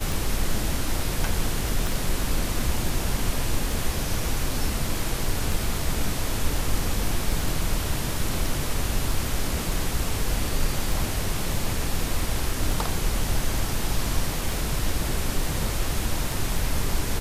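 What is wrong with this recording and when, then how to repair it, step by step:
tick 33 1/3 rpm
1.87 s: pop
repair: de-click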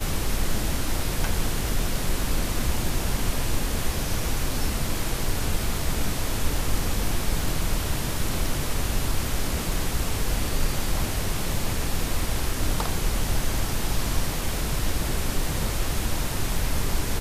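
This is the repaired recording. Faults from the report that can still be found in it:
1.87 s: pop

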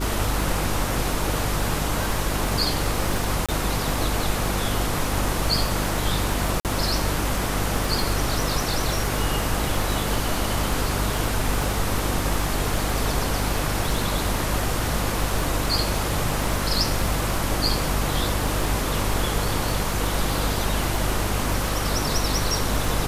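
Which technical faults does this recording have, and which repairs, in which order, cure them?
crackle 29 per s -26 dBFS
hum 50 Hz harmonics 7 -28 dBFS
3.46–3.49 s: dropout 26 ms
6.60–6.65 s: dropout 48 ms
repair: de-click; de-hum 50 Hz, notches 7; interpolate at 3.46 s, 26 ms; interpolate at 6.60 s, 48 ms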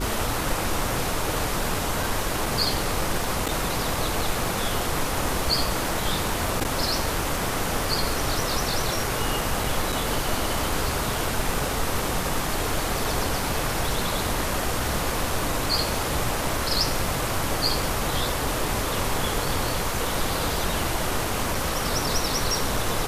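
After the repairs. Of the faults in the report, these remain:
nothing left

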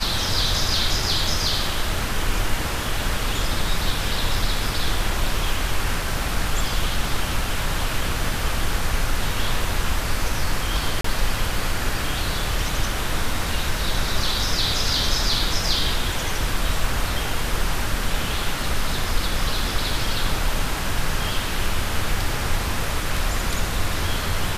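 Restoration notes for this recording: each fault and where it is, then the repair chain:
11.01–11.04 s: dropout 34 ms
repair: interpolate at 11.01 s, 34 ms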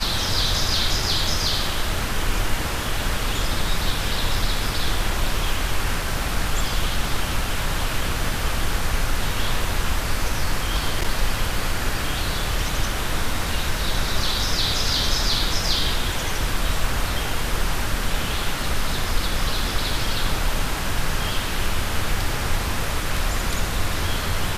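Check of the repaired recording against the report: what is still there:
nothing left

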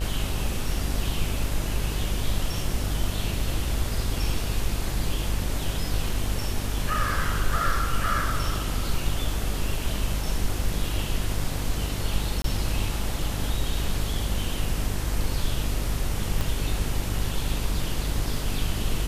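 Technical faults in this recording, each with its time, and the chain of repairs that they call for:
buzz 50 Hz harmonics 39 -30 dBFS
12.42–12.44 s: dropout 23 ms
16.41 s: pop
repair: de-click; de-hum 50 Hz, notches 39; interpolate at 12.42 s, 23 ms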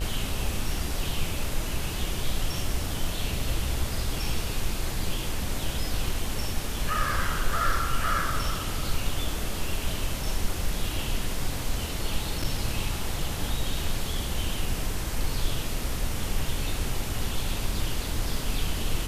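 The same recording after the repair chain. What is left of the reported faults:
16.41 s: pop

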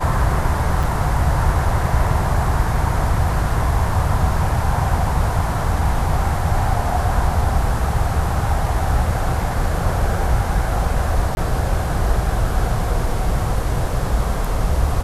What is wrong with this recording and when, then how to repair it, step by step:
0.83–0.84 s: dropout 5.5 ms
11.35–11.37 s: dropout 21 ms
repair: interpolate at 0.83 s, 5.5 ms; interpolate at 11.35 s, 21 ms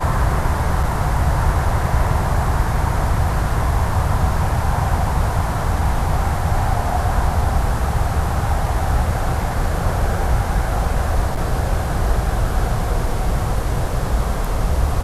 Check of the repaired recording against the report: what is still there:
nothing left

